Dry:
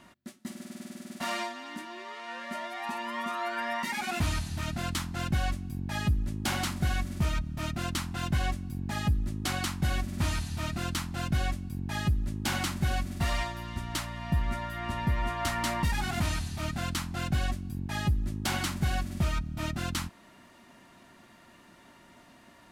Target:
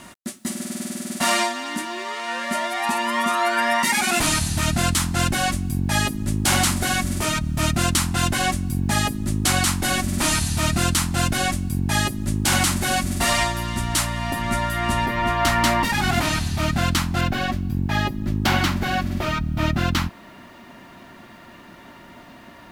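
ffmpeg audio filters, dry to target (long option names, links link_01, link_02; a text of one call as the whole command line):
ffmpeg -i in.wav -af "asetnsamples=nb_out_samples=441:pad=0,asendcmd='15.06 equalizer g -2.5;17.21 equalizer g -12',equalizer=frequency=9100:width=0.85:gain=9,afftfilt=real='re*lt(hypot(re,im),0.282)':imag='im*lt(hypot(re,im),0.282)':win_size=1024:overlap=0.75,acrusher=bits=11:mix=0:aa=0.000001,alimiter=level_in=19dB:limit=-1dB:release=50:level=0:latency=1,volume=-7dB" out.wav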